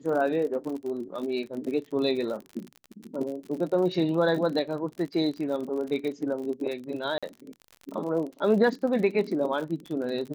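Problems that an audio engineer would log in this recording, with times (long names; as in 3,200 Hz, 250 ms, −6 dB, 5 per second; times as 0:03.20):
surface crackle 54 per second −34 dBFS
0:07.18–0:07.23: drop-out 46 ms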